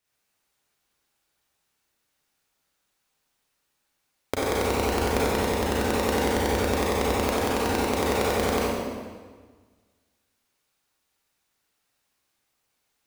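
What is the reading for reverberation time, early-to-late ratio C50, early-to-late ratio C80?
1.5 s, -4.0 dB, -0.5 dB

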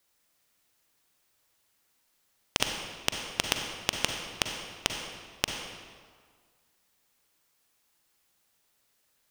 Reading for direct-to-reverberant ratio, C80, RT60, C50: 3.0 dB, 5.0 dB, 1.8 s, 3.5 dB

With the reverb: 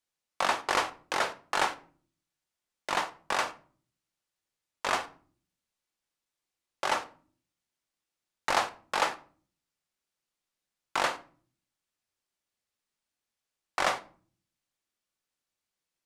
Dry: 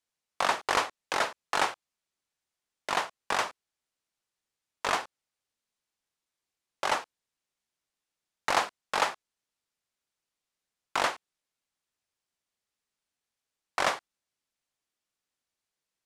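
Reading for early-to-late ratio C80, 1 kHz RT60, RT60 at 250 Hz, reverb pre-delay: 22.0 dB, 0.40 s, 0.75 s, 3 ms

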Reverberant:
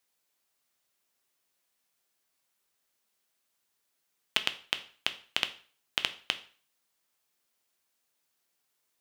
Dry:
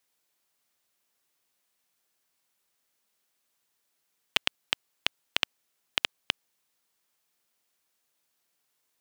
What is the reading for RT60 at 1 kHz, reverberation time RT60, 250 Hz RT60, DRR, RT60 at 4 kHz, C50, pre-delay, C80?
0.45 s, 0.40 s, 0.40 s, 9.0 dB, 0.40 s, 15.5 dB, 4 ms, 19.5 dB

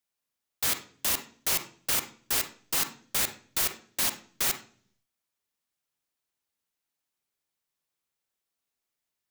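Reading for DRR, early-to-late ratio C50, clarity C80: 7.5 dB, 10.5 dB, 16.5 dB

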